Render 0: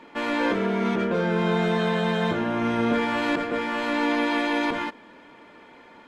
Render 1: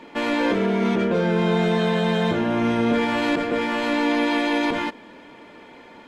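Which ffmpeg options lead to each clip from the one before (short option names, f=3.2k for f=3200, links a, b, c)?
-filter_complex "[0:a]equalizer=f=1.3k:w=1.3:g=-4.5,asplit=2[a][b];[b]alimiter=limit=-21.5dB:level=0:latency=1,volume=-1dB[c];[a][c]amix=inputs=2:normalize=0"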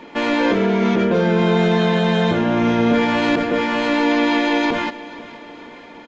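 -af "aecho=1:1:481|962|1443|1924|2405:0.126|0.068|0.0367|0.0198|0.0107,volume=4dB" -ar 16000 -c:a aac -b:a 64k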